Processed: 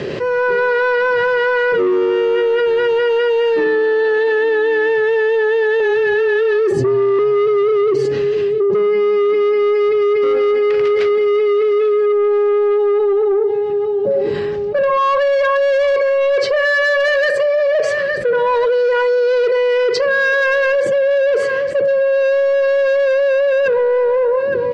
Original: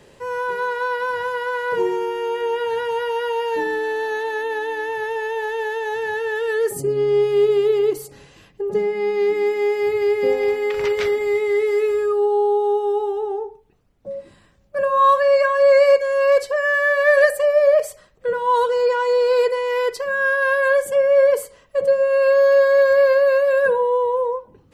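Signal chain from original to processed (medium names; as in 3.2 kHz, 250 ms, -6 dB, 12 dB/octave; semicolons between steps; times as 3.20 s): in parallel at -4 dB: hard clipper -17 dBFS, distortion -10 dB; on the sum: cabinet simulation 100–4700 Hz, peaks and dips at 140 Hz +4 dB, 380 Hz +8 dB, 900 Hz -10 dB, 3.6 kHz -4 dB; 5.80–7.19 s: frequency shift -15 Hz; 17.08–17.75 s: peaking EQ 720 Hz -8.5 dB 0.78 oct; on a send: feedback delay 865 ms, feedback 26%, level -19.5 dB; on the sum: saturation -11.5 dBFS, distortion -13 dB; level rider gain up to 11.5 dB; peak limiter -8.5 dBFS, peak gain reduction 6 dB; level flattener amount 70%; trim -4 dB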